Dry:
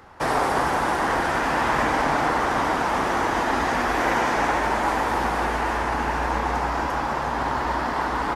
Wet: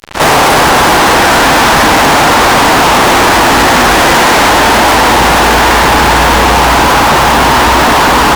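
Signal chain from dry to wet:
backwards echo 59 ms −20 dB
fuzz pedal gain 42 dB, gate −41 dBFS
level +8 dB

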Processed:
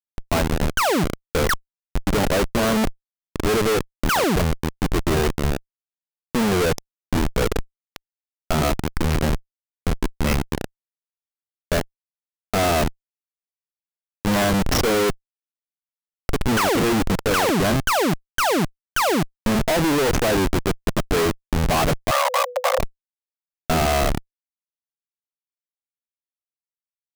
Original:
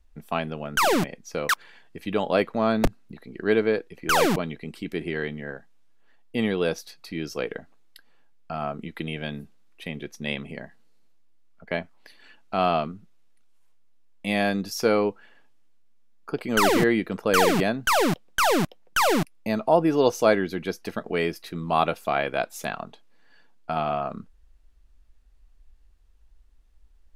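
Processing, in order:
comparator with hysteresis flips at −29 dBFS
0:22.11–0:22.79: frequency shifter +490 Hz
level +8.5 dB

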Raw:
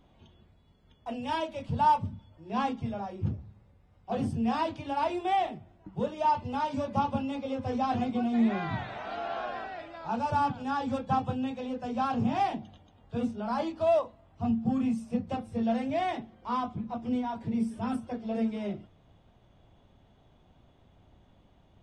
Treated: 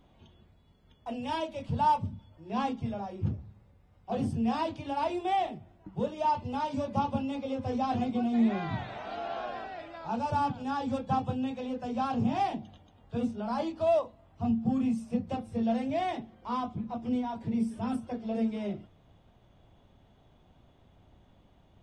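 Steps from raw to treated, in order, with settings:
dynamic equaliser 1,500 Hz, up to −4 dB, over −44 dBFS, Q 1

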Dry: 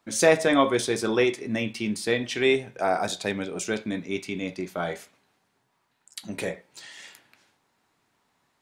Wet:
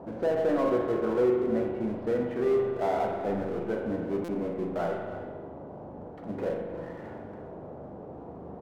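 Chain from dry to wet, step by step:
low-pass filter 1,300 Hz 24 dB per octave
parametric band 560 Hz +4.5 dB 1.4 octaves
brickwall limiter −14 dBFS, peak gain reduction 10 dB
power curve on the samples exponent 0.7
noise in a band 62–680 Hz −37 dBFS
tuned comb filter 490 Hz, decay 0.46 s, mix 60%
slap from a distant wall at 54 metres, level −12 dB
spring reverb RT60 1.4 s, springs 40 ms, chirp 45 ms, DRR 2.5 dB
buffer that repeats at 0:04.24, samples 256, times 7

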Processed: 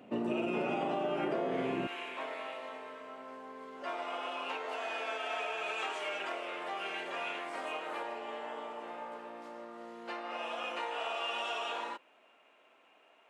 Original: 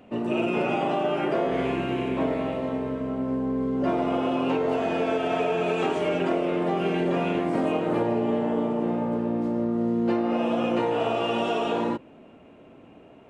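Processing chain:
high-pass filter 150 Hz 12 dB per octave, from 0:01.87 1,100 Hz
downward compressor, threshold −27 dBFS, peak gain reduction 6.5 dB
level −3 dB

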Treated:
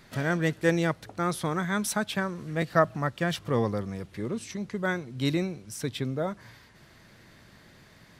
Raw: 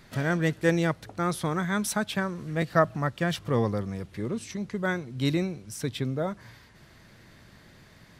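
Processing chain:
low-shelf EQ 130 Hz −4 dB

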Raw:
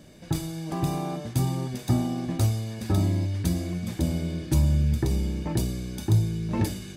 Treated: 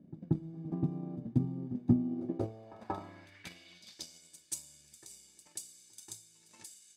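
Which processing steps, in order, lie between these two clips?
transient designer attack +10 dB, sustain −3 dB
band-pass filter sweep 230 Hz → 7,900 Hz, 0:02.02–0:04.27
backwards echo 183 ms −17.5 dB
level −4 dB

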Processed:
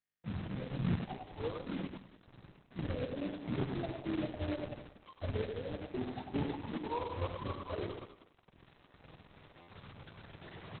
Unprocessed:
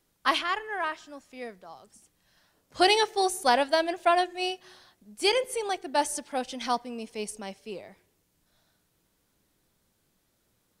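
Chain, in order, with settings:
frequency axis turned over on the octave scale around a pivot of 470 Hz
camcorder AGC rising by 6.3 dB per second
dynamic equaliser 180 Hz, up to +6 dB, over −40 dBFS, Q 1.5
reversed playback
downward compressor 10 to 1, threshold −35 dBFS, peak gain reduction 22.5 dB
reversed playback
phase shifter 1.1 Hz, delay 3.1 ms, feedback 45%
log-companded quantiser 4 bits
repeating echo 99 ms, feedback 42%, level −5 dB
on a send at −14.5 dB: convolution reverb RT60 0.65 s, pre-delay 68 ms
on the sum: buffer that repeats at 0:09.60, samples 512, times 6
Opus 6 kbit/s 48,000 Hz

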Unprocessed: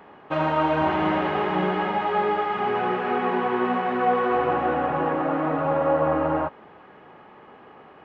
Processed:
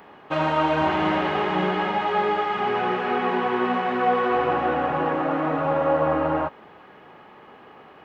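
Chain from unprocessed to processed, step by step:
high-shelf EQ 4,000 Hz +11.5 dB

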